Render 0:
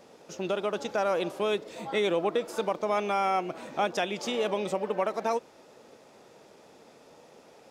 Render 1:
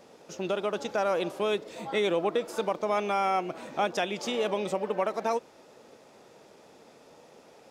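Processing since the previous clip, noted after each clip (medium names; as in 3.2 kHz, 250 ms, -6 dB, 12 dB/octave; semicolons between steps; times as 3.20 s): no audible change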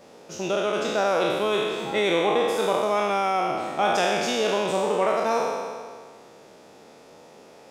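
spectral sustain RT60 1.80 s; trim +2 dB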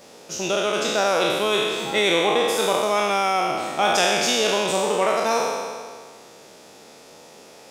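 treble shelf 2.6 kHz +10 dB; trim +1 dB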